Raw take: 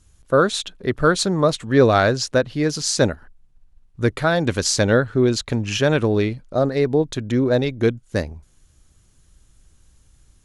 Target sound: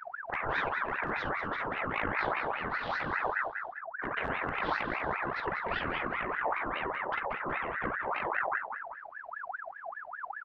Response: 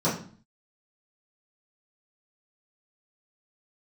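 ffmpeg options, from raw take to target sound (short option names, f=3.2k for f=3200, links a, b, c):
-filter_complex "[0:a]aeval=exprs='if(lt(val(0),0),0.708*val(0),val(0))':c=same,asplit=2[a][b];[b]aecho=0:1:41|58:0.237|0.251[c];[a][c]amix=inputs=2:normalize=0,acompressor=threshold=-20dB:ratio=12,lowpass=2.3k,asoftclip=type=hard:threshold=-15dB,asplit=2[d][e];[e]aecho=0:1:188|376|564|752:0.316|0.126|0.0506|0.0202[f];[d][f]amix=inputs=2:normalize=0,afftfilt=real='re*lt(hypot(re,im),0.0891)':imag='im*lt(hypot(re,im),0.0891)':win_size=1024:overlap=0.75,asetrate=24046,aresample=44100,atempo=1.83401,tiltshelf=f=970:g=9,aeval=exprs='val(0)*sin(2*PI*1200*n/s+1200*0.45/5*sin(2*PI*5*n/s))':c=same,volume=5dB"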